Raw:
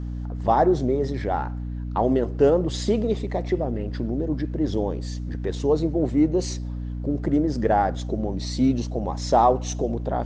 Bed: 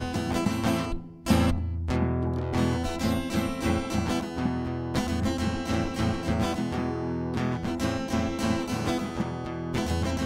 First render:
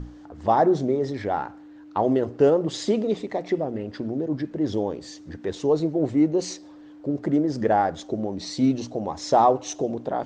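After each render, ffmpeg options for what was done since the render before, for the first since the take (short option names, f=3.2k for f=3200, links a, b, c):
-af "bandreject=f=60:t=h:w=6,bandreject=f=120:t=h:w=6,bandreject=f=180:t=h:w=6,bandreject=f=240:t=h:w=6"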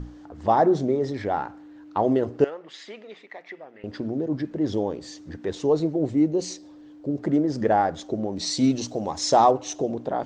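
-filter_complex "[0:a]asettb=1/sr,asplit=3[a][b][c];[a]atrim=end=2.444[d];[b]atrim=start=2.44:end=3.84,asetpts=PTS-STARTPTS,afade=t=in:d=0.004:c=qsin,afade=t=out:st=1.396:d=0.004:c=qsin,bandpass=f=2k:t=q:w=1.8[e];[c]atrim=start=3.836[f];[d][e]acrossfade=d=0.004:c1=hsin:c2=qsin[g];[g][f]acrossfade=d=0.004:c1=qsin:c2=hsin,asettb=1/sr,asplit=3[h][i][j];[h]atrim=end=5.964[k];[i]atrim=start=5.96:end=7.19,asetpts=PTS-STARTPTS,afade=t=in:d=0.004:c=qsin,afade=t=out:st=1.226:d=0.004:c=qsin,equalizer=f=1.3k:t=o:w=2.2:g=-5.5[l];[j]atrim=start=7.186[m];[k][l]acrossfade=d=0.004:c1=hsin:c2=qsin[n];[n][m]acrossfade=d=0.004:c1=qsin:c2=hsin,asettb=1/sr,asplit=3[o][p][q];[o]atrim=end=8.364[r];[p]atrim=start=8.36:end=9.51,asetpts=PTS-STARTPTS,afade=t=in:d=0.004:c=qsin,afade=t=out:st=1.146:d=0.004:c=qsin,highshelf=f=3.8k:g=11.5[s];[q]atrim=start=9.506[t];[r][s]acrossfade=d=0.004:c1=hsin:c2=qsin[u];[u][t]acrossfade=d=0.004:c1=qsin:c2=hsin"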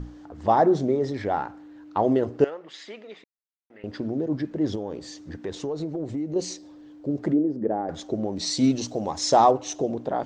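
-filter_complex "[0:a]asettb=1/sr,asplit=3[a][b][c];[a]atrim=end=4.754[d];[b]atrim=start=4.75:end=6.36,asetpts=PTS-STARTPTS,afade=t=in:d=0.004:c=qsin,afade=t=out:st=1.606:d=0.004:c=qsin,acompressor=threshold=-26dB:ratio=6:attack=3.2:release=140:knee=1:detection=peak[e];[c]atrim=start=6.356[f];[d][e]acrossfade=d=0.004:c1=hsin:c2=qsin[g];[g][f]acrossfade=d=0.004:c1=qsin:c2=hsin,asplit=3[h][i][j];[h]afade=t=out:st=7.32:d=0.02[k];[i]bandpass=f=310:t=q:w=1.3,afade=t=in:st=7.32:d=0.02,afade=t=out:st=7.88:d=0.02[l];[j]afade=t=in:st=7.88:d=0.02[m];[k][l][m]amix=inputs=3:normalize=0,asplit=3[n][o][p];[n]atrim=end=3.24,asetpts=PTS-STARTPTS,afade=t=out:st=3.236:d=0.004:c=hsin[q];[o]atrim=start=3.24:end=3.7,asetpts=PTS-STARTPTS,volume=0[r];[p]atrim=start=3.7,asetpts=PTS-STARTPTS,afade=t=in:d=0.004:c=hsin[s];[q][r][s]concat=n=3:v=0:a=1"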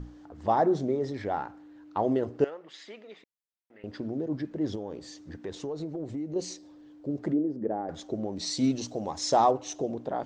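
-af "volume=-5dB"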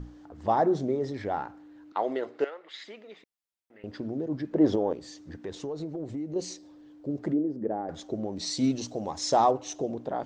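-filter_complex "[0:a]asettb=1/sr,asplit=3[a][b][c];[a]atrim=end=1.924[d];[b]atrim=start=1.92:end=2.84,asetpts=PTS-STARTPTS,afade=t=in:d=0.004:c=qsin,afade=t=out:st=0.916:d=0.004:c=qsin,highpass=420,equalizer=f=1.4k:t=q:w=4:g=4,equalizer=f=2.1k:t=q:w=4:g=9,equalizer=f=3.8k:t=q:w=4:g=7,equalizer=f=6k:t=q:w=4:g=-4,lowpass=f=8.1k:w=0.5412,lowpass=f=8.1k:w=1.3066[e];[c]atrim=start=2.836[f];[d][e]acrossfade=d=0.004:c1=hsin:c2=qsin[g];[g][f]acrossfade=d=0.004:c1=qsin:c2=hsin,asettb=1/sr,asplit=3[h][i][j];[h]atrim=end=4.534[k];[i]atrim=start=4.53:end=4.93,asetpts=PTS-STARTPTS,afade=t=in:d=0.004:c=qsin,afade=t=out:st=0.396:d=0.004:c=qsin,equalizer=f=640:w=0.38:g=12[l];[j]atrim=start=4.926[m];[k][l]acrossfade=d=0.004:c1=hsin:c2=qsin[n];[n][m]acrossfade=d=0.004:c1=qsin:c2=hsin"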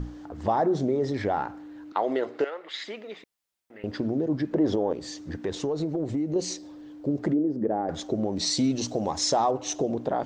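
-filter_complex "[0:a]asplit=2[a][b];[b]alimiter=limit=-21.5dB:level=0:latency=1:release=21,volume=3dB[c];[a][c]amix=inputs=2:normalize=0,acompressor=threshold=-24dB:ratio=2"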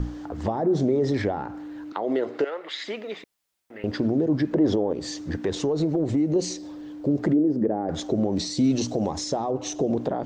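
-filter_complex "[0:a]asplit=2[a][b];[b]alimiter=limit=-22dB:level=0:latency=1,volume=-0.5dB[c];[a][c]amix=inputs=2:normalize=0,acrossover=split=490[d][e];[e]acompressor=threshold=-30dB:ratio=10[f];[d][f]amix=inputs=2:normalize=0"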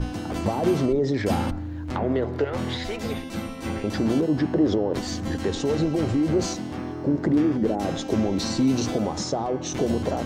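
-filter_complex "[1:a]volume=-4dB[a];[0:a][a]amix=inputs=2:normalize=0"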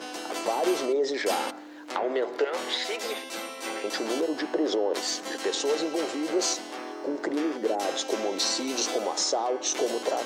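-af "highpass=f=380:w=0.5412,highpass=f=380:w=1.3066,equalizer=f=7.7k:t=o:w=2.9:g=6"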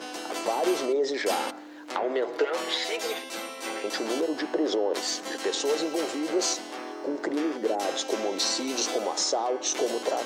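-filter_complex "[0:a]asettb=1/sr,asplit=3[a][b][c];[a]atrim=end=2.284[d];[b]atrim=start=2.28:end=3.19,asetpts=PTS-STARTPTS,afade=t=in:d=0.004:c=qsin,afade=t=out:st=0.906:d=0.004:c=qsin,aecho=1:1:6.3:0.57,atrim=end_sample=40131[e];[c]atrim=start=3.186[f];[d][e]acrossfade=d=0.004:c1=hsin:c2=qsin[g];[g][f]acrossfade=d=0.004:c1=qsin:c2=hsin,asettb=1/sr,asplit=3[h][i][j];[h]atrim=end=5.644[k];[i]atrim=start=5.64:end=6.19,asetpts=PTS-STARTPTS,afade=t=in:d=0.004:c=qsin,afade=t=out:st=0.546:d=0.004:c=qsin,highshelf=f=11k:g=8.5[l];[j]atrim=start=6.186[m];[k][l]acrossfade=d=0.004:c1=hsin:c2=qsin[n];[n][m]acrossfade=d=0.004:c1=qsin:c2=hsin"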